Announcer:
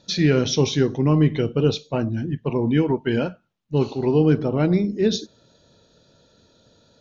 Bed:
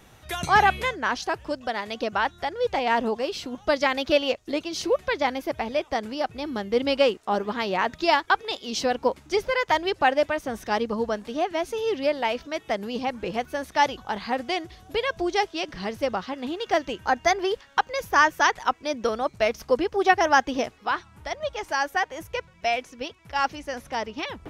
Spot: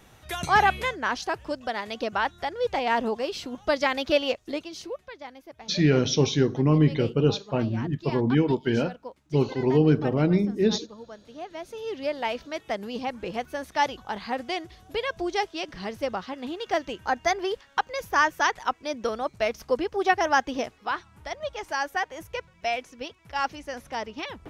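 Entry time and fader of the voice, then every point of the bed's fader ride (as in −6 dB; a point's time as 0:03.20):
5.60 s, −2.5 dB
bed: 0:04.45 −1.5 dB
0:05.12 −17 dB
0:11.05 −17 dB
0:12.26 −3 dB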